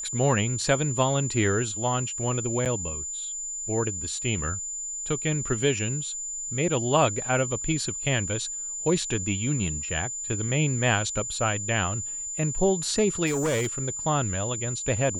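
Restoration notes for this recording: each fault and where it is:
whistle 7,100 Hz −31 dBFS
0:02.65–0:02.66: drop-out 7.7 ms
0:13.26–0:13.67: clipping −22 dBFS

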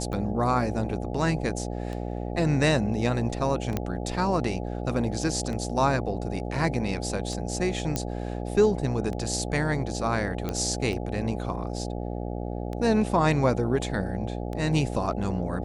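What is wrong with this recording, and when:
mains buzz 60 Hz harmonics 14 −32 dBFS
scratch tick 33 1/3 rpm −22 dBFS
0:03.77: click −13 dBFS
0:07.96: click −12 dBFS
0:10.49: click −15 dBFS

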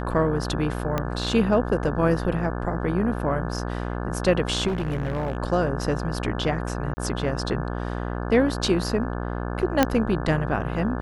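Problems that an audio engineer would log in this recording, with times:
mains buzz 60 Hz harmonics 29 −29 dBFS
0:00.98: click −11 dBFS
0:04.67–0:05.37: clipping −22 dBFS
0:06.94–0:06.97: drop-out 30 ms
0:09.83: click −4 dBFS

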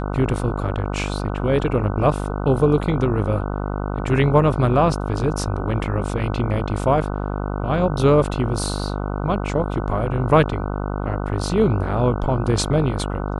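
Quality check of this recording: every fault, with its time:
mains buzz 50 Hz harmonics 30 −25 dBFS

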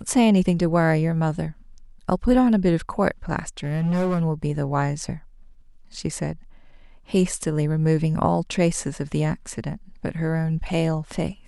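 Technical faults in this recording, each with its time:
0:03.63–0:04.22: clipping −19 dBFS

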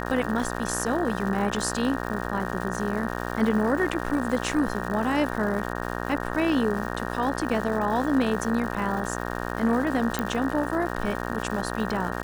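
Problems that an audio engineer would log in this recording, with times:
mains buzz 60 Hz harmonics 31 −31 dBFS
surface crackle 310 per second −33 dBFS
0:10.19: click −11 dBFS

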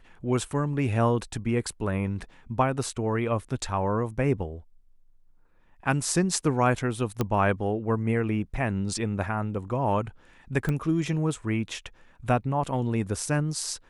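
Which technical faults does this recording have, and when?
0:07.21: click −12 dBFS
0:10.69: click −16 dBFS

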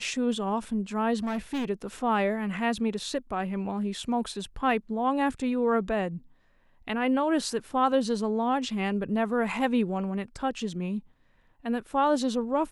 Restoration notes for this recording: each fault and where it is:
0:01.23–0:01.65: clipping −27 dBFS

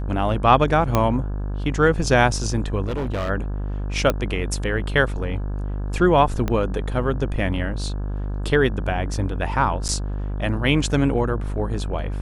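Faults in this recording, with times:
mains buzz 50 Hz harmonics 34 −26 dBFS
0:00.95: click −5 dBFS
0:02.84–0:03.30: clipping −21.5 dBFS
0:04.10: click −7 dBFS
0:06.48: click −11 dBFS
0:09.88–0:09.89: drop-out 9.5 ms

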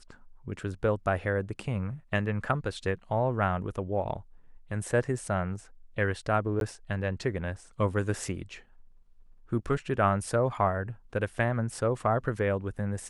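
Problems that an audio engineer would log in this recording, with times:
0:06.60–0:06.61: drop-out 12 ms

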